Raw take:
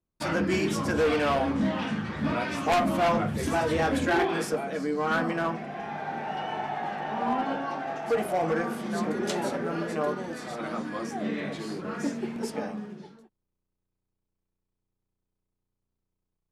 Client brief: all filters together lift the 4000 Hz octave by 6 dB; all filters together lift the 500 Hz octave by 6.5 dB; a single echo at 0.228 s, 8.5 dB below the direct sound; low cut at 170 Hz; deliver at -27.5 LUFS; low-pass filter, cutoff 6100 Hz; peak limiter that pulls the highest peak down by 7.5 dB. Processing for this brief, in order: HPF 170 Hz; LPF 6100 Hz; bell 500 Hz +8 dB; bell 4000 Hz +8.5 dB; limiter -16.5 dBFS; echo 0.228 s -8.5 dB; gain -1 dB

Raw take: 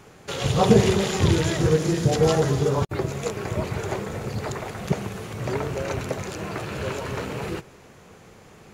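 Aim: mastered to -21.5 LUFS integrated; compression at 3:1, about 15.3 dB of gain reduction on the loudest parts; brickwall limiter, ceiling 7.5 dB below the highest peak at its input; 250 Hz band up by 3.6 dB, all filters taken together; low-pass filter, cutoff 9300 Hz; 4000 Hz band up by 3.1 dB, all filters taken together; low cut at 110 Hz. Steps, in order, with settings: HPF 110 Hz; LPF 9300 Hz; bell 250 Hz +6 dB; bell 4000 Hz +4 dB; compressor 3:1, threshold -29 dBFS; gain +11.5 dB; limiter -11.5 dBFS

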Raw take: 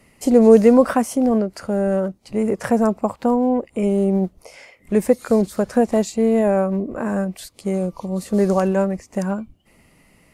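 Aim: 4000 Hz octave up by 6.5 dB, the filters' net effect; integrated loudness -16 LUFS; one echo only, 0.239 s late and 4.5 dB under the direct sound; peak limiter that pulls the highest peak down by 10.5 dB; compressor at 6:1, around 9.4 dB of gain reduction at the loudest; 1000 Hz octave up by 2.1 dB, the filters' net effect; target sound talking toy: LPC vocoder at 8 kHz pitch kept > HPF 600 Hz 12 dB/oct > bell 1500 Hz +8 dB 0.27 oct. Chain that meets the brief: bell 1000 Hz +3.5 dB; bell 4000 Hz +8 dB; compressor 6:1, threshold -16 dBFS; limiter -17 dBFS; echo 0.239 s -4.5 dB; LPC vocoder at 8 kHz pitch kept; HPF 600 Hz 12 dB/oct; bell 1500 Hz +8 dB 0.27 oct; gain +16.5 dB

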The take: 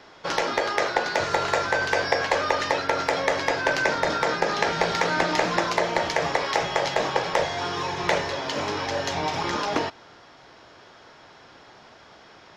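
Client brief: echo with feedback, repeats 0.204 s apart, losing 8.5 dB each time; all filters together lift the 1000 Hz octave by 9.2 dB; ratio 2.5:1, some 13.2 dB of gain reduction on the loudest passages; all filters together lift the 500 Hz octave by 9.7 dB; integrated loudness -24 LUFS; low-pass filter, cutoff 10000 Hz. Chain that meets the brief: LPF 10000 Hz; bell 500 Hz +9 dB; bell 1000 Hz +8.5 dB; compressor 2.5:1, threshold -31 dBFS; feedback echo 0.204 s, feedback 38%, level -8.5 dB; gain +4.5 dB

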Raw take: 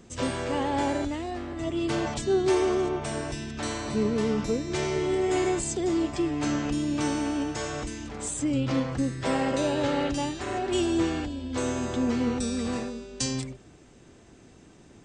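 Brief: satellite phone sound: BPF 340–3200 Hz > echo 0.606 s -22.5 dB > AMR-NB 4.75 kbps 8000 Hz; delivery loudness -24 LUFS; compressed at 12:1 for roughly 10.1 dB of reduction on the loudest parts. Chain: compressor 12:1, threshold -30 dBFS; BPF 340–3200 Hz; echo 0.606 s -22.5 dB; gain +15.5 dB; AMR-NB 4.75 kbps 8000 Hz

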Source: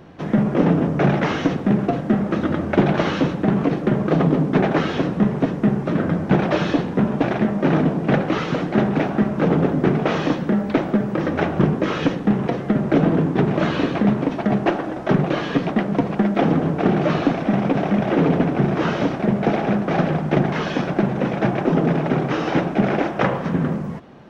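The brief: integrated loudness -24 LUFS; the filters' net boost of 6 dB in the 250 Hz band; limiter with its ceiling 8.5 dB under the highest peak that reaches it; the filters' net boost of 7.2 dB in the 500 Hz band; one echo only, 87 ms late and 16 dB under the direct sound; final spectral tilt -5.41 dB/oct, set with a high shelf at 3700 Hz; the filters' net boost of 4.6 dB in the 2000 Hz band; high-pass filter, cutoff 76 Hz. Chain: HPF 76 Hz; bell 250 Hz +6 dB; bell 500 Hz +7 dB; bell 2000 Hz +4 dB; high shelf 3700 Hz +5.5 dB; limiter -6 dBFS; echo 87 ms -16 dB; gain -7.5 dB

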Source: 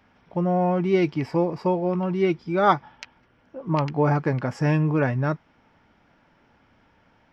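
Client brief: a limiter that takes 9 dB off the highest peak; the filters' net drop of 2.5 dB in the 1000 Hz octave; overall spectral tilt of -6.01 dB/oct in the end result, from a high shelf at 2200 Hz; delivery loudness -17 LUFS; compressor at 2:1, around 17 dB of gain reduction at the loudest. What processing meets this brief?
bell 1000 Hz -4.5 dB; high shelf 2200 Hz +5.5 dB; compressor 2:1, threshold -49 dBFS; gain +24.5 dB; limiter -7.5 dBFS

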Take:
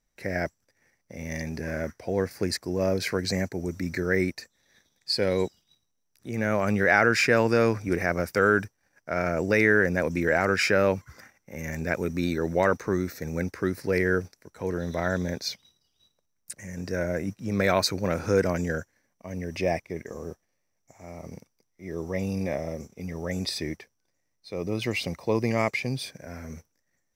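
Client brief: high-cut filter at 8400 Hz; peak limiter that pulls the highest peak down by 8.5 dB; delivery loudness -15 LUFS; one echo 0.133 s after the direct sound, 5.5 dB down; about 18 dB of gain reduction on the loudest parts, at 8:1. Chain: LPF 8400 Hz; compressor 8:1, threshold -35 dBFS; limiter -30 dBFS; echo 0.133 s -5.5 dB; gain +26 dB

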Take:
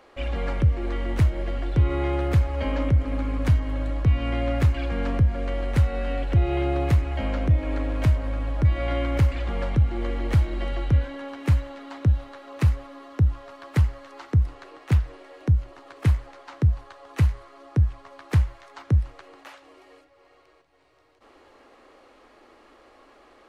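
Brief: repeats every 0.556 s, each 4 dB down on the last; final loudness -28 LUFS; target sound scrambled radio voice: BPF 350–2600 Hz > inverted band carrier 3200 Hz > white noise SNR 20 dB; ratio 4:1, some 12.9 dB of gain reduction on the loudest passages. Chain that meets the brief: compressor 4:1, threshold -30 dBFS; BPF 350–2600 Hz; feedback echo 0.556 s, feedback 63%, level -4 dB; inverted band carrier 3200 Hz; white noise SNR 20 dB; gain +9 dB

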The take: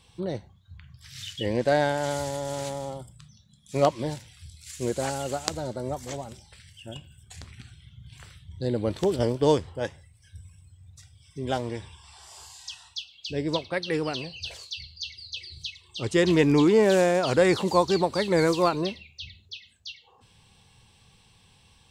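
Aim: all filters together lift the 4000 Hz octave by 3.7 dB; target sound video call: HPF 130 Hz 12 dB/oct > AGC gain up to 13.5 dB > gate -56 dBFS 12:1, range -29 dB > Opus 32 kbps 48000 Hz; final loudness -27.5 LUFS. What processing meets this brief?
HPF 130 Hz 12 dB/oct; bell 4000 Hz +4.5 dB; AGC gain up to 13.5 dB; gate -56 dBFS 12:1, range -29 dB; gain -1.5 dB; Opus 32 kbps 48000 Hz

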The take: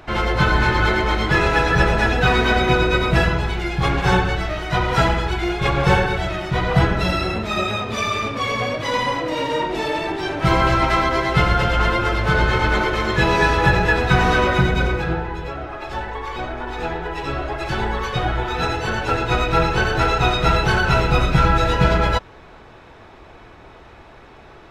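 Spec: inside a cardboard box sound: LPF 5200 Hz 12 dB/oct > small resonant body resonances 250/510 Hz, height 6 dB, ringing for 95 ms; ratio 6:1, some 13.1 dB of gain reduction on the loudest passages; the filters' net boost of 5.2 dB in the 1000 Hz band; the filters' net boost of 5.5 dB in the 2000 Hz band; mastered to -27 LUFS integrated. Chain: bell 1000 Hz +5 dB; bell 2000 Hz +5.5 dB; compressor 6:1, threshold -23 dBFS; LPF 5200 Hz 12 dB/oct; small resonant body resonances 250/510 Hz, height 6 dB, ringing for 95 ms; gain -1.5 dB

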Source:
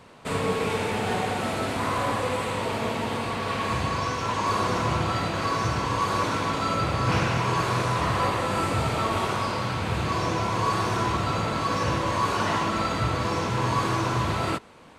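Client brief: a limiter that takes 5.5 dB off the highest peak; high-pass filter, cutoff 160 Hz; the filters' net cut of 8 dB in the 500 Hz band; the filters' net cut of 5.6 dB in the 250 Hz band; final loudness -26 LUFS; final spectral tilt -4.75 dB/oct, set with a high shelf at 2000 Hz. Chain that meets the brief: HPF 160 Hz; bell 250 Hz -3.5 dB; bell 500 Hz -8.5 dB; high shelf 2000 Hz -6.5 dB; gain +5.5 dB; limiter -16.5 dBFS

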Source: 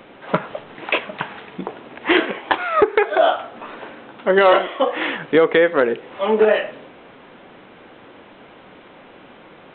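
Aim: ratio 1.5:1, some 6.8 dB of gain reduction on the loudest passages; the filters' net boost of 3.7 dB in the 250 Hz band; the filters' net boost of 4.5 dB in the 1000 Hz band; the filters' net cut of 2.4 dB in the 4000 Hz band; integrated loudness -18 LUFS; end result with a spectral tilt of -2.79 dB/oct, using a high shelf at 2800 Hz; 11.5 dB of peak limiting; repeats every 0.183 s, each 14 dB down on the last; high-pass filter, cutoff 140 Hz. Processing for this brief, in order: HPF 140 Hz; bell 250 Hz +5.5 dB; bell 1000 Hz +5.5 dB; high shelf 2800 Hz +4.5 dB; bell 4000 Hz -8 dB; compressor 1.5:1, threshold -26 dBFS; limiter -15.5 dBFS; feedback echo 0.183 s, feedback 20%, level -14 dB; gain +9 dB

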